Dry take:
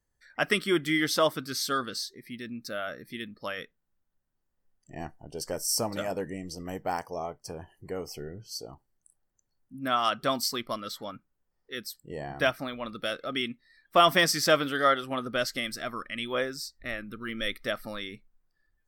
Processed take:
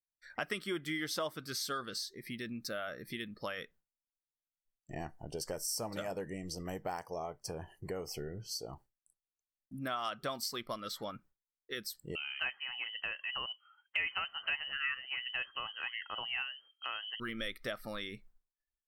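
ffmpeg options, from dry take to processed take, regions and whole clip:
-filter_complex "[0:a]asettb=1/sr,asplit=3[a][b][c];[a]atrim=end=12.154[d];[b]atrim=start=12.15:end=17.2,asetpts=PTS-STARTPTS,afade=t=in:d=0.004:c=qsin,afade=t=out:st=5.046:d=0.004:c=qsin,aemphasis=mode=reproduction:type=50fm,lowpass=f=2.7k:t=q:w=0.5098,lowpass=f=2.7k:t=q:w=0.6013,lowpass=f=2.7k:t=q:w=0.9,lowpass=f=2.7k:t=q:w=2.563,afreqshift=-3200[e];[c]atrim=start=17.196[f];[d][e]acrossfade=d=0.004:c1=hsin:c2=qsin[g];[g][f]acrossfade=d=0.004:c1=qsin:c2=hsin,agate=range=-33dB:threshold=-54dB:ratio=3:detection=peak,equalizer=f=260:w=5.6:g=-6,acompressor=threshold=-42dB:ratio=3,volume=3dB"

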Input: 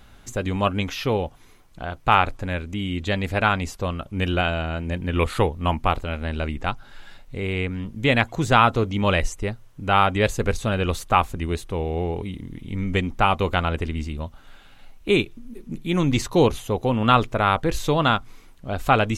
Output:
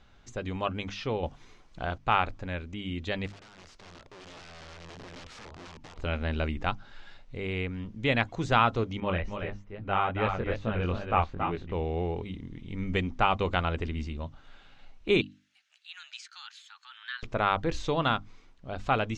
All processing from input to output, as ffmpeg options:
-filter_complex "[0:a]asettb=1/sr,asplit=3[a][b][c];[a]atrim=end=1.234[d];[b]atrim=start=1.23:end=1.98,asetpts=PTS-STARTPTS,afade=t=in:d=0.004:c=qsin,afade=t=out:st=0.746:d=0.004:c=qsin,acontrast=65,highshelf=f=9.8k:g=7[e];[c]atrim=start=1.976[f];[d][e]acrossfade=d=0.004:c1=hsin:c2=qsin[g];[g][f]acrossfade=d=0.004:c1=qsin:c2=hsin,asettb=1/sr,asplit=3[h][i][j];[h]atrim=end=3.264[k];[i]atrim=start=3.26:end=5.99,asetpts=PTS-STARTPTS,afade=t=in:d=0.004:c=qsin,afade=t=out:st=2.726:d=0.004:c=qsin,flanger=delay=2.1:depth=4.3:regen=89:speed=1.2:shape=sinusoidal,acompressor=threshold=-37dB:ratio=12:attack=3.2:release=140:knee=1:detection=peak,aeval=exprs='(mod(84.1*val(0)+1,2)-1)/84.1':c=same[l];[j]atrim=start=5.986[m];[k][l]acrossfade=d=0.004:c1=hsin:c2=qsin[n];[n][m]acrossfade=d=0.004:c1=qsin:c2=hsin,asettb=1/sr,asplit=3[o][p][q];[o]atrim=end=9.004[r];[p]atrim=start=9:end=11.72,asetpts=PTS-STARTPTS,afade=t=in:d=0.004:c=qsin,afade=t=out:st=2.716:d=0.004:c=qsin,lowpass=2.6k,aecho=1:1:277:0.501,atrim=end_sample=119952,flanger=delay=18:depth=5.1:speed=2.4[s];[q]atrim=start=11.716[t];[r][s]acrossfade=d=0.004:c1=hsin:c2=qsin[u];[u][t]acrossfade=d=0.004:c1=qsin:c2=hsin,asettb=1/sr,asplit=3[v][w][x];[v]atrim=end=15.214[y];[w]atrim=start=15.21:end=17.23,asetpts=PTS-STARTPTS,afade=t=in:d=0.004:c=qsin,afade=t=out:st=2.016:d=0.004:c=qsin,highpass=f=1.2k:w=0.5412,highpass=f=1.2k:w=1.3066,acompressor=threshold=-50dB:ratio=1.5:attack=3.2:release=140:knee=1:detection=peak,afreqshift=370[z];[x]atrim=start=17.226[aa];[y][z]acrossfade=d=0.004:c1=hsin:c2=qsin[ab];[ab][aa]acrossfade=d=0.004:c1=qsin:c2=hsin,lowpass=f=6.3k:w=0.5412,lowpass=f=6.3k:w=1.3066,bandreject=f=50:t=h:w=6,bandreject=f=100:t=h:w=6,bandreject=f=150:t=h:w=6,bandreject=f=200:t=h:w=6,bandreject=f=250:t=h:w=6,bandreject=f=300:t=h:w=6,dynaudnorm=f=510:g=7:m=11.5dB,volume=-8.5dB"

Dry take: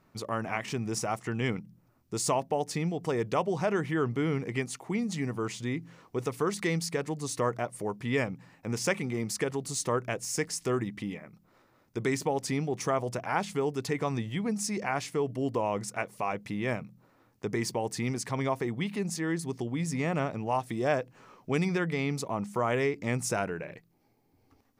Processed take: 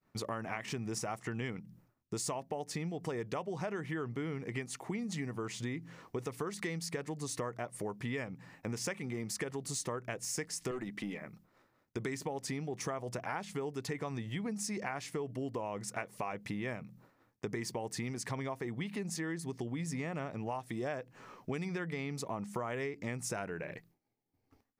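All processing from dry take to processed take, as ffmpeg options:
-filter_complex "[0:a]asettb=1/sr,asplit=3[a][b][c];[a]atrim=end=10.714[d];[b]atrim=start=10.71:end=11.21,asetpts=PTS-STARTPTS,afade=t=in:d=0.004:c=qsin,afade=t=out:st=0.496:d=0.004:c=qsin,highpass=190,aeval=exprs='(tanh(17.8*val(0)+0.25)-tanh(0.25))/17.8':c=same[e];[c]atrim=start=11.206[f];[d][e]acrossfade=d=0.004:c1=hsin:c2=qsin[g];[g][f]acrossfade=d=0.004:c1=qsin:c2=hsin,agate=range=-33dB:threshold=-57dB:ratio=3:detection=peak,equalizer=f=1.8k:t=o:w=0.39:g=3,acompressor=threshold=-36dB:ratio=6,volume=1dB"

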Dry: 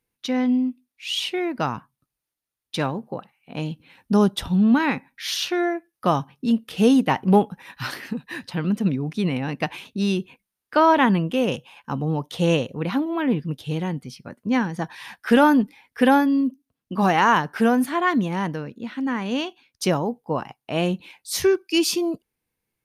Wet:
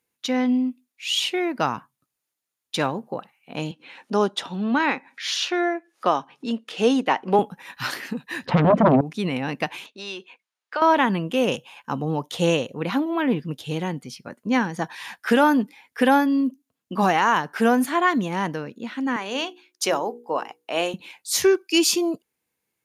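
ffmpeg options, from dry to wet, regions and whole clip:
-filter_complex "[0:a]asettb=1/sr,asplit=3[a][b][c];[a]atrim=end=3.714[d];[b]atrim=start=3.71:end=7.39,asetpts=PTS-STARTPTS,afade=t=in:d=0.004:c=qsin,afade=t=out:st=3.676:d=0.004:c=qsin,highshelf=f=5.8k:g=-5.5,acompressor=mode=upward:threshold=-36dB:ratio=2.5:attack=3.2:release=140:knee=2.83:detection=peak,highpass=300,lowpass=7.9k[e];[c]atrim=start=7.386[f];[d][e]acrossfade=d=0.004:c1=hsin:c2=qsin[g];[g][f]acrossfade=d=0.004:c1=qsin:c2=hsin,asettb=1/sr,asplit=3[h][i][j];[h]atrim=end=8.464[k];[i]atrim=start=8.46:end=9.01,asetpts=PTS-STARTPTS,afade=t=in:d=0.004:c=qsin,afade=t=out:st=0.546:d=0.004:c=qsin,lowpass=1.6k,lowshelf=f=470:g=6.5,aeval=exprs='0.447*sin(PI/2*3.55*val(0)/0.447)':c=same[l];[j]atrim=start=9.006[m];[k][l]acrossfade=d=0.004:c1=hsin:c2=qsin[n];[n][m]acrossfade=d=0.004:c1=qsin:c2=hsin,asettb=1/sr,asplit=3[o][p][q];[o]atrim=end=9.864[r];[p]atrim=start=9.86:end=10.82,asetpts=PTS-STARTPTS,afade=t=in:d=0.004:c=qsin,afade=t=out:st=0.956:d=0.004:c=qsin,acompressor=threshold=-21dB:ratio=6:attack=3.2:release=140:knee=1:detection=peak,highpass=570,lowpass=5.1k[s];[q]atrim=start=10.816[t];[r][s]acrossfade=d=0.004:c1=hsin:c2=qsin[u];[u][t]acrossfade=d=0.004:c1=qsin:c2=hsin,asettb=1/sr,asplit=3[v][w][x];[v]atrim=end=19.164[y];[w]atrim=start=19.16:end=20.94,asetpts=PTS-STARTPTS,afade=t=in:d=0.004:c=qsin,afade=t=out:st=1.776:d=0.004:c=qsin,highpass=360,bandreject=f=60:t=h:w=6,bandreject=f=120:t=h:w=6,bandreject=f=180:t=h:w=6,bandreject=f=240:t=h:w=6,bandreject=f=300:t=h:w=6,bandreject=f=360:t=h:w=6,bandreject=f=420:t=h:w=6,bandreject=f=480:t=h:w=6[z];[x]atrim=start=20.936[aa];[y][z]acrossfade=d=0.004:c1=hsin:c2=qsin[ab];[ab][aa]acrossfade=d=0.004:c1=qsin:c2=hsin,highpass=f=260:p=1,equalizer=f=7k:w=6.2:g=6.5,alimiter=limit=-10dB:level=0:latency=1:release=416,volume=2.5dB"

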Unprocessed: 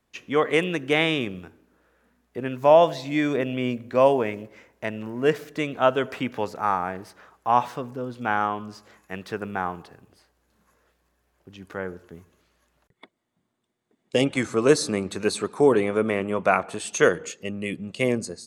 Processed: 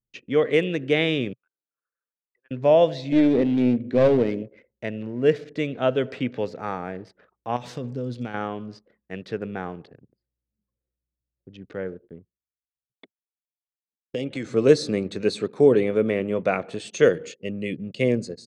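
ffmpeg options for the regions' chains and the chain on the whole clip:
-filter_complex "[0:a]asettb=1/sr,asplit=3[a][b][c];[a]atrim=end=1.334[d];[b]atrim=start=1.33:end=2.51,asetpts=PTS-STARTPTS,afade=t=in:d=0.004:c=qsin,afade=t=out:st=1.176:d=0.004:c=qsin,acompressor=threshold=-59dB:ratio=2:attack=3.2:release=140:knee=1:detection=peak,highpass=f=1.1k:t=q:w=2.7[e];[c]atrim=start=2.506[f];[d][e]acrossfade=d=0.004:c1=hsin:c2=qsin[g];[g][f]acrossfade=d=0.004:c1=qsin:c2=hsin,asettb=1/sr,asplit=3[h][i][j];[h]atrim=end=3.124[k];[i]atrim=start=3.12:end=4.43,asetpts=PTS-STARTPTS,afade=t=in:d=0.004:c=qsin,afade=t=out:st=1.306:d=0.004:c=qsin,equalizer=f=280:t=o:w=1.1:g=9,aeval=exprs='clip(val(0),-1,0.075)':c=same[l];[j]atrim=start=4.426[m];[k][l]acrossfade=d=0.004:c1=hsin:c2=qsin[n];[n][m]acrossfade=d=0.004:c1=qsin:c2=hsin,asettb=1/sr,asplit=3[o][p][q];[o]atrim=end=7.564[r];[p]atrim=start=7.56:end=8.34,asetpts=PTS-STARTPTS,afade=t=in:d=0.004:c=qsin,afade=t=out:st=0.776:d=0.004:c=qsin,bass=f=250:g=4,treble=f=4k:g=12,acompressor=threshold=-26dB:ratio=6:attack=3.2:release=140:knee=1:detection=peak[s];[q]atrim=start=8.336[t];[r][s]acrossfade=d=0.004:c1=hsin:c2=qsin[u];[u][t]acrossfade=d=0.004:c1=qsin:c2=hsin,asettb=1/sr,asplit=3[v][w][x];[v]atrim=end=11.884[y];[w]atrim=start=11.88:end=14.52,asetpts=PTS-STARTPTS,afade=t=in:d=0.004:c=qsin,afade=t=out:st=2.636:d=0.004:c=qsin,agate=range=-33dB:threshold=-54dB:ratio=3:release=100:detection=peak,equalizer=f=110:t=o:w=1:g=-2.5,acompressor=threshold=-28dB:ratio=3:attack=3.2:release=140:knee=1:detection=peak[z];[x]atrim=start=14.516[aa];[y][z]acrossfade=d=0.004:c1=hsin:c2=qsin[ab];[ab][aa]acrossfade=d=0.004:c1=qsin:c2=hsin,lowpass=7.5k,anlmdn=0.0158,equalizer=f=125:t=o:w=1:g=11,equalizer=f=250:t=o:w=1:g=6,equalizer=f=500:t=o:w=1:g=10,equalizer=f=1k:t=o:w=1:g=-6,equalizer=f=2k:t=o:w=1:g=5,equalizer=f=4k:t=o:w=1:g=7,volume=-8dB"

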